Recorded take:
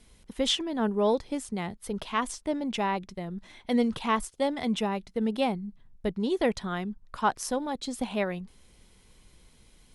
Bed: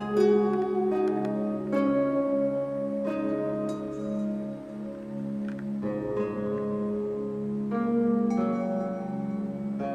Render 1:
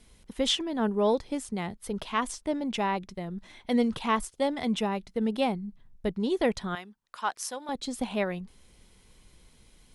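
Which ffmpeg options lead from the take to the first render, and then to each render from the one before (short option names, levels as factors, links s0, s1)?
-filter_complex "[0:a]asettb=1/sr,asplit=3[s0][s1][s2];[s0]atrim=end=6.754[s3];[s1]atrim=start=6.75:end=7.69,asetpts=PTS-STARTPTS,afade=t=in:d=0.004:c=qsin,afade=t=out:st=0.936:d=0.004:c=qsin,highpass=f=1300:p=1[s4];[s2]atrim=start=7.686[s5];[s3][s4]acrossfade=d=0.004:c1=hsin:c2=qsin[s6];[s6][s5]acrossfade=d=0.004:c1=qsin:c2=hsin"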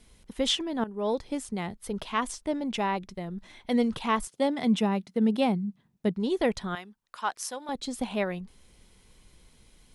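-filter_complex "[0:a]asettb=1/sr,asplit=3[s0][s1][s2];[s0]atrim=end=4.274[s3];[s1]atrim=start=4.27:end=6.16,asetpts=PTS-STARTPTS,afade=t=in:d=0.004:c=qsin,afade=t=out:st=1.886:d=0.004:c=qsin,highpass=f=170:t=q:w=1.9[s4];[s2]atrim=start=6.156[s5];[s3][s4]acrossfade=d=0.004:c1=hsin:c2=qsin[s6];[s6][s5]acrossfade=d=0.004:c1=qsin:c2=hsin,asplit=2[s7][s8];[s7]atrim=end=0.84,asetpts=PTS-STARTPTS,afade=t=out:st=0.836:d=0.004:c=hsin:silence=0.16788[s9];[s8]atrim=start=0.84,asetpts=PTS-STARTPTS,afade=t=in:d=0.43:silence=0.16788[s10];[s9][s10]concat=n=2:v=0:a=1"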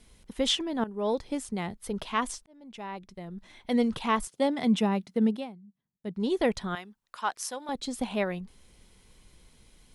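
-filter_complex "[0:a]asplit=4[s0][s1][s2][s3];[s0]atrim=end=2.46,asetpts=PTS-STARTPTS,afade=t=out:st=2.456:d=0.004:c=hsin[s4];[s1]atrim=start=2.46:end=5.55,asetpts=PTS-STARTPTS,afade=t=in:d=1.38,afade=t=out:st=2.8:d=0.29:c=qua:silence=0.0944061[s5];[s2]atrim=start=5.55:end=5.93,asetpts=PTS-STARTPTS,volume=0.0944[s6];[s3]atrim=start=5.93,asetpts=PTS-STARTPTS,afade=t=in:d=0.29:c=qua:silence=0.0944061[s7];[s4][s5][s6][s7]concat=n=4:v=0:a=1"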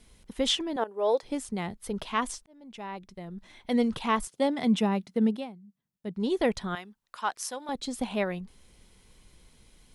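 -filter_complex "[0:a]asettb=1/sr,asplit=3[s0][s1][s2];[s0]atrim=end=0.764[s3];[s1]atrim=start=0.76:end=1.23,asetpts=PTS-STARTPTS,afade=t=in:d=0.004:c=qsin,afade=t=out:st=0.466:d=0.004:c=qsin,highpass=f=510:t=q:w=1.8[s4];[s2]atrim=start=1.226[s5];[s3][s4]acrossfade=d=0.004:c1=hsin:c2=qsin[s6];[s6][s5]acrossfade=d=0.004:c1=qsin:c2=hsin"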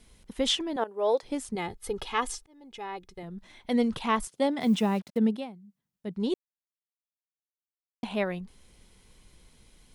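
-filter_complex "[0:a]asettb=1/sr,asplit=3[s0][s1][s2];[s0]atrim=end=1.554[s3];[s1]atrim=start=1.55:end=3.23,asetpts=PTS-STARTPTS,afade=t=in:d=0.004:c=qsin,afade=t=out:st=1.676:d=0.004:c=qsin,aecho=1:1:2.4:0.65,atrim=end_sample=74088[s4];[s2]atrim=start=3.226[s5];[s3][s4]acrossfade=d=0.004:c1=hsin:c2=qsin[s6];[s6][s5]acrossfade=d=0.004:c1=qsin:c2=hsin,asplit=3[s7][s8][s9];[s7]afade=t=out:st=4.6:d=0.02[s10];[s8]acrusher=bits=7:mix=0:aa=0.5,afade=t=in:st=4.6:d=0.02,afade=t=out:st=5.17:d=0.02[s11];[s9]afade=t=in:st=5.17:d=0.02[s12];[s10][s11][s12]amix=inputs=3:normalize=0,asplit=3[s13][s14][s15];[s13]atrim=end=6.34,asetpts=PTS-STARTPTS,afade=t=out:st=6.336:d=0.004:c=hsin[s16];[s14]atrim=start=6.34:end=8.03,asetpts=PTS-STARTPTS,volume=0[s17];[s15]atrim=start=8.03,asetpts=PTS-STARTPTS,afade=t=in:d=0.004:c=hsin[s18];[s16][s17][s18]concat=n=3:v=0:a=1"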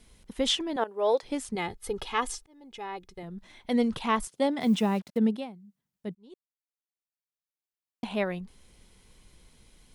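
-filter_complex "[0:a]asettb=1/sr,asplit=3[s0][s1][s2];[s0]atrim=end=0.694[s3];[s1]atrim=start=0.69:end=1.76,asetpts=PTS-STARTPTS,afade=t=in:d=0.004:c=qsin,afade=t=out:st=1.066:d=0.004:c=qsin,equalizer=f=2500:t=o:w=2.5:g=3[s4];[s2]atrim=start=1.756[s5];[s3][s4]acrossfade=d=0.004:c1=hsin:c2=qsin[s6];[s6][s5]acrossfade=d=0.004:c1=qsin:c2=hsin,asplit=2[s7][s8];[s7]atrim=end=6.15,asetpts=PTS-STARTPTS,afade=t=out:st=6.146:d=0.004:c=hsin[s9];[s8]atrim=start=6.15,asetpts=PTS-STARTPTS,afade=t=in:d=1.91[s10];[s9][s10]concat=n=2:v=0:a=1"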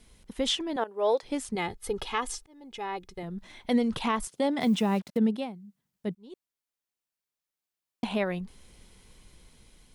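-af "dynaudnorm=f=980:g=5:m=1.58,alimiter=limit=0.141:level=0:latency=1:release=217"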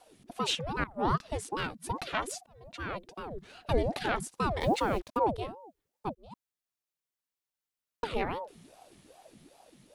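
-af "aeval=exprs='0.141*(cos(1*acos(clip(val(0)/0.141,-1,1)))-cos(1*PI/2))+0.02*(cos(2*acos(clip(val(0)/0.141,-1,1)))-cos(2*PI/2))':c=same,aeval=exprs='val(0)*sin(2*PI*460*n/s+460*0.65/2.5*sin(2*PI*2.5*n/s))':c=same"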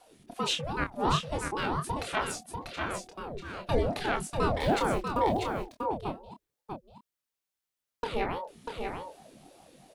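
-filter_complex "[0:a]asplit=2[s0][s1];[s1]adelay=27,volume=0.501[s2];[s0][s2]amix=inputs=2:normalize=0,aecho=1:1:642:0.562"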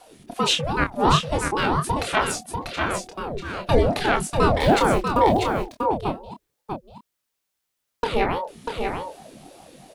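-af "volume=2.82"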